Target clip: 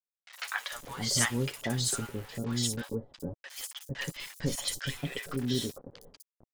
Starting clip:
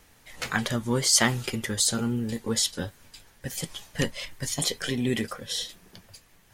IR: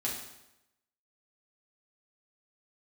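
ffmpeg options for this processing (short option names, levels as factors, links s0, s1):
-filter_complex "[0:a]aecho=1:1:7.1:0.38,asplit=2[s0][s1];[s1]acompressor=threshold=0.0126:ratio=8,volume=1[s2];[s0][s2]amix=inputs=2:normalize=0,aeval=exprs='val(0)*gte(abs(val(0)),0.0211)':c=same,acrossover=split=750|5900[s3][s4][s5];[s5]adelay=60[s6];[s3]adelay=450[s7];[s7][s4][s6]amix=inputs=3:normalize=0,volume=0.473"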